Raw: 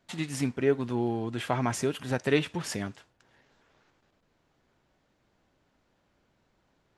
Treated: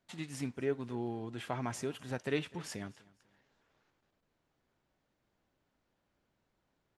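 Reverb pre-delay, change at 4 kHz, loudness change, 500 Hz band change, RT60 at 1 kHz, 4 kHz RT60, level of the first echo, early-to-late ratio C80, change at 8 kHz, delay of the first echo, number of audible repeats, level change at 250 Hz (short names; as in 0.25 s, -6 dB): none, -9.0 dB, -9.0 dB, -9.0 dB, none, none, -23.0 dB, none, -9.0 dB, 0.25 s, 2, -9.0 dB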